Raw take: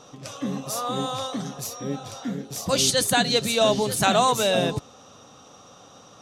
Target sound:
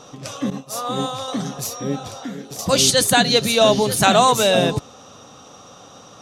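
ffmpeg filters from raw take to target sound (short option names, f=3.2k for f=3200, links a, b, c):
-filter_complex "[0:a]asettb=1/sr,asplit=3[a][b][c];[a]atrim=end=0.504[d];[b]atrim=start=0.5:end=1.28,asetpts=PTS-STARTPTS,afade=t=in:d=0.004:c=qsin,afade=t=out:st=0.776:d=0.004:c=qsin,agate=range=-33dB:threshold=-24dB:ratio=3:detection=peak[e];[c]atrim=start=1.276[f];[d][e]acrossfade=d=0.004:c1=hsin:c2=qsin[g];[g][f]acrossfade=d=0.004:c1=qsin:c2=hsin,asettb=1/sr,asplit=3[h][i][j];[h]atrim=end=2.074[k];[i]atrim=start=2.07:end=2.59,asetpts=PTS-STARTPTS,afade=t=in:d=0.004:c=qsin,afade=t=out:st=0.516:d=0.004:c=qsin,acrossover=split=210|1000[l][m][n];[l]acompressor=threshold=-46dB:ratio=4[o];[m]acompressor=threshold=-36dB:ratio=4[p];[n]acompressor=threshold=-42dB:ratio=4[q];[o][p][q]amix=inputs=3:normalize=0[r];[j]atrim=start=2.586[s];[k][r]acrossfade=d=0.004:c1=hsin:c2=qsin[t];[t][s]acrossfade=d=0.004:c1=qsin:c2=hsin,asettb=1/sr,asplit=3[u][v][w];[u]atrim=end=3.204[x];[v]atrim=start=3.2:end=3.99,asetpts=PTS-STARTPTS,afade=t=in:d=0.004:c=qsin,afade=t=out:st=0.786:d=0.004:c=qsin,bandreject=f=7.8k:w=7[y];[w]atrim=start=3.986[z];[x][y]acrossfade=d=0.004:c1=hsin:c2=qsin[aa];[aa][z]acrossfade=d=0.004:c1=qsin:c2=hsin,volume=5.5dB"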